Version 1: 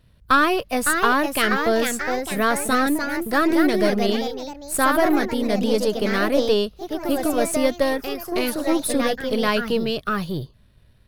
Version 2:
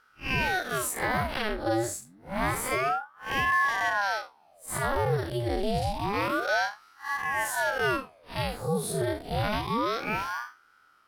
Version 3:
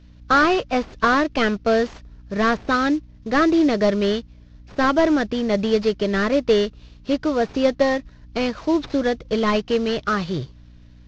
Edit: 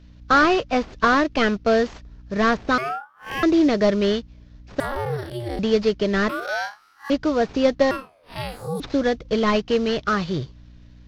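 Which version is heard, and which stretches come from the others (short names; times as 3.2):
3
2.78–3.43 from 2
4.8–5.59 from 2
6.29–7.1 from 2
7.91–8.8 from 2
not used: 1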